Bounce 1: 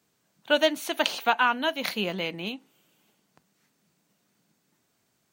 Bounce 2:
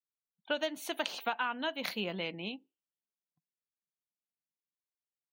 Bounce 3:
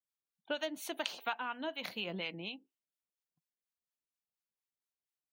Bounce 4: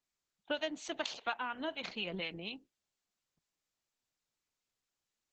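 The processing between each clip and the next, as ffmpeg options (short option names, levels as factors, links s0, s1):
-af "afftdn=nr=34:nf=-47,acompressor=threshold=0.0708:ratio=5,volume=0.501"
-filter_complex "[0:a]acrossover=split=760[s0][s1];[s0]aeval=exprs='val(0)*(1-0.7/2+0.7/2*cos(2*PI*4.2*n/s))':c=same[s2];[s1]aeval=exprs='val(0)*(1-0.7/2-0.7/2*cos(2*PI*4.2*n/s))':c=same[s3];[s2][s3]amix=inputs=2:normalize=0"
-af "volume=1.12" -ar 48000 -c:a libopus -b:a 10k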